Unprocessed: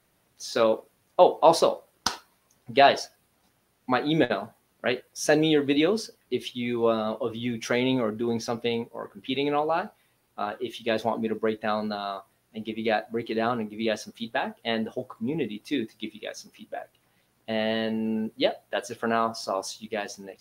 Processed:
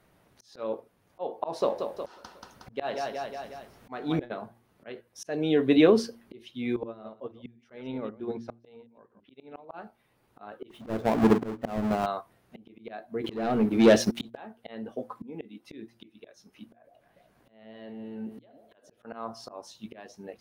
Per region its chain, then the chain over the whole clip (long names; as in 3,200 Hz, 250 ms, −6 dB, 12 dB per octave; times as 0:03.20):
0:01.60–0:04.23: mu-law and A-law mismatch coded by mu + repeating echo 182 ms, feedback 44%, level −12 dB
0:06.76–0:09.74: delay that plays each chunk backwards 111 ms, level −11 dB + high-shelf EQ 7,800 Hz −11 dB + expander for the loud parts 2.5 to 1, over −33 dBFS
0:10.70–0:12.06: each half-wave held at its own peak + tilt shelving filter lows +4.5 dB, about 1,400 Hz
0:13.24–0:14.37: parametric band 1,100 Hz −11.5 dB 0.7 octaves + leveller curve on the samples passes 3
0:14.94–0:15.67: high-pass filter 160 Hz 6 dB per octave + comb filter 4 ms, depth 37%
0:16.67–0:19.05: downward compressor 16 to 1, threshold −38 dBFS + delay that swaps between a low-pass and a high-pass 146 ms, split 850 Hz, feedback 52%, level −9 dB
whole clip: volume swells 754 ms; high-shelf EQ 2,900 Hz −11 dB; hum removal 116.5 Hz, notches 3; level +6.5 dB